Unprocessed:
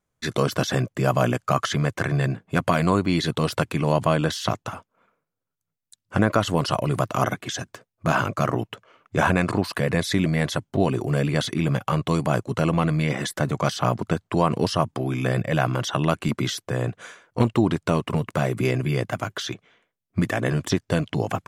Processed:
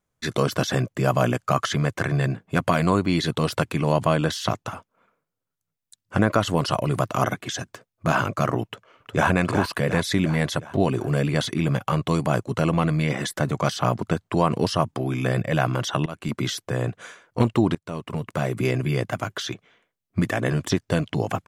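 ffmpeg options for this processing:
ffmpeg -i in.wav -filter_complex "[0:a]asplit=2[link_01][link_02];[link_02]afade=type=in:start_time=8.64:duration=0.01,afade=type=out:start_time=9.29:duration=0.01,aecho=0:1:360|720|1080|1440|1800|2160|2520:0.473151|0.260233|0.143128|0.0787205|0.0432963|0.023813|0.0130971[link_03];[link_01][link_03]amix=inputs=2:normalize=0,asplit=3[link_04][link_05][link_06];[link_04]atrim=end=16.06,asetpts=PTS-STARTPTS,afade=type=out:start_time=16.056:duration=0.004:curve=hsin:silence=0.0944061[link_07];[link_05]atrim=start=16.06:end=17.75,asetpts=PTS-STARTPTS,afade=type=in:duration=0.53:curve=qsin:silence=0.0944061,afade=type=out:start_time=1.686:duration=0.004:curve=hsin:silence=0.0891251[link_08];[link_06]atrim=start=17.75,asetpts=PTS-STARTPTS,afade=type=in:duration=1.18:curve=qsin:silence=0.0891251[link_09];[link_07][link_08][link_09]concat=n=3:v=0:a=1" out.wav

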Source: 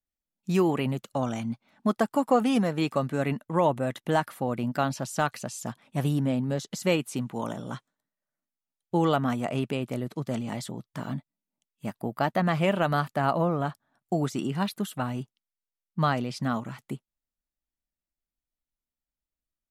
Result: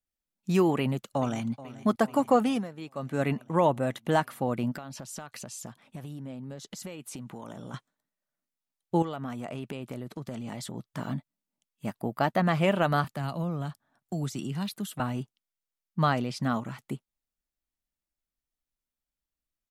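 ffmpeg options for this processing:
ffmpeg -i in.wav -filter_complex "[0:a]asplit=2[link_01][link_02];[link_02]afade=type=in:start_time=0.78:duration=0.01,afade=type=out:start_time=1.52:duration=0.01,aecho=0:1:430|860|1290|1720|2150|2580|3010|3440:0.149624|0.104736|0.0733155|0.0513209|0.0359246|0.0251472|0.0176031|0.0123221[link_03];[link_01][link_03]amix=inputs=2:normalize=0,asettb=1/sr,asplit=3[link_04][link_05][link_06];[link_04]atrim=end=4.764[link_07];[link_05]atrim=start=4.76:end=7.74,asetpts=PTS-STARTPTS,afade=type=in:duration=0.004:curve=qsin,afade=type=out:start_time=2.976:duration=0.004:curve=qsin,acompressor=threshold=-36dB:ratio=12:attack=3.2:release=140:knee=1:detection=peak[link_08];[link_06]atrim=start=7.736[link_09];[link_07][link_08]acrossfade=duration=0.004:curve1=hsin:curve2=qsin[link_10];[link_10][link_09]acrossfade=duration=0.004:curve1=qsin:curve2=hsin,asettb=1/sr,asplit=3[link_11][link_12][link_13];[link_11]atrim=end=9.024[link_14];[link_12]atrim=start=9.02:end=10.75,asetpts=PTS-STARTPTS,afade=type=in:duration=0.004:curve=qsin,afade=type=out:start_time=1.726:duration=0.004:curve=qsin,acompressor=threshold=-33dB:ratio=4:attack=3.2:release=140:knee=1:detection=peak[link_15];[link_13]atrim=start=10.746[link_16];[link_14][link_15]acrossfade=duration=0.004:curve1=hsin:curve2=qsin[link_17];[link_17][link_16]acrossfade=duration=0.004:curve1=qsin:curve2=hsin,asettb=1/sr,asplit=3[link_18][link_19][link_20];[link_18]atrim=end=13.044[link_21];[link_19]atrim=start=13.04:end=15,asetpts=PTS-STARTPTS,afade=type=in:duration=0.004:curve=qsin,afade=type=out:start_time=1.956:duration=0.004:curve=qsin,acrossover=split=200|3000[link_22][link_23][link_24];[link_23]acompressor=threshold=-44dB:ratio=2:attack=3.2:release=140:knee=2.83:detection=peak[link_25];[link_22][link_25][link_24]amix=inputs=3:normalize=0[link_26];[link_20]atrim=start=14.996[link_27];[link_21][link_26]acrossfade=duration=0.004:curve1=hsin:curve2=qsin[link_28];[link_28][link_27]acrossfade=duration=0.004:curve1=qsin:curve2=hsin,asplit=3[link_29][link_30][link_31];[link_29]atrim=end=2.68,asetpts=PTS-STARTPTS,afade=type=out:start_time=2.41:duration=0.27:silence=0.199526[link_32];[link_30]atrim=start=2.68:end=2.94,asetpts=PTS-STARTPTS,volume=-14dB[link_33];[link_31]atrim=start=2.94,asetpts=PTS-STARTPTS,afade=type=in:duration=0.27:silence=0.199526[link_34];[link_32][link_33][link_34]concat=n=3:v=0:a=1" out.wav

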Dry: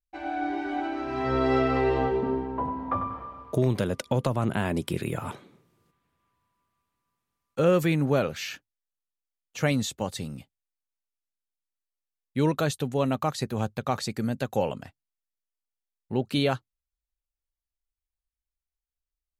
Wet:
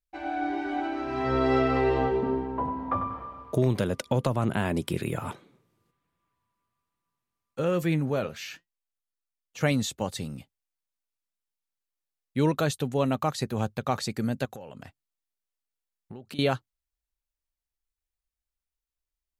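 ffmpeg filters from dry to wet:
ffmpeg -i in.wav -filter_complex "[0:a]asettb=1/sr,asplit=3[link_01][link_02][link_03];[link_01]atrim=end=5.334[link_04];[link_02]atrim=start=5.33:end=9.61,asetpts=PTS-STARTPTS,afade=type=in:duration=0.004:curve=qsin,afade=type=out:start_time=4.276:duration=0.004:curve=qsin,flanger=delay=5.7:depth=3.8:regen=74:speed=1.2:shape=sinusoidal[link_05];[link_03]atrim=start=9.606[link_06];[link_04][link_05]acrossfade=duration=0.004:curve1=hsin:curve2=qsin[link_07];[link_07][link_06]acrossfade=duration=0.004:curve1=qsin:curve2=hsin,asettb=1/sr,asplit=3[link_08][link_09][link_10];[link_08]atrim=end=14.454[link_11];[link_09]atrim=start=14.45:end=16.39,asetpts=PTS-STARTPTS,afade=type=in:duration=0.004:curve=qsin,afade=type=out:start_time=1.936:duration=0.004:curve=qsin,acompressor=threshold=-37dB:ratio=16:attack=3.2:release=140:knee=1:detection=peak[link_12];[link_10]atrim=start=16.386[link_13];[link_11][link_12]acrossfade=duration=0.004:curve1=hsin:curve2=qsin[link_14];[link_14][link_13]acrossfade=duration=0.004:curve1=qsin:curve2=hsin" out.wav

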